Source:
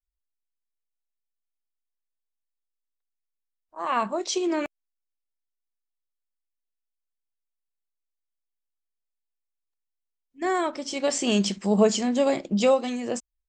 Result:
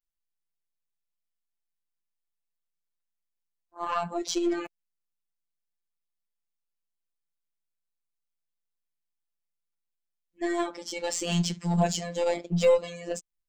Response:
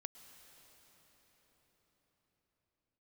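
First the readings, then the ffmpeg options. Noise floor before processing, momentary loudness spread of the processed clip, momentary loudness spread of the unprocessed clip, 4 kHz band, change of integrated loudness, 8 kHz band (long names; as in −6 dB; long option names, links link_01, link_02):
−83 dBFS, 12 LU, 9 LU, −3.5 dB, −3.5 dB, −3.0 dB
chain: -af "afftfilt=real='hypot(re,im)*cos(PI*b)':imag='0':win_size=1024:overlap=0.75,aeval=exprs='0.299*(cos(1*acos(clip(val(0)/0.299,-1,1)))-cos(1*PI/2))+0.0075*(cos(5*acos(clip(val(0)/0.299,-1,1)))-cos(5*PI/2))+0.00531*(cos(7*acos(clip(val(0)/0.299,-1,1)))-cos(7*PI/2))+0.0106*(cos(8*acos(clip(val(0)/0.299,-1,1)))-cos(8*PI/2))':channel_layout=same"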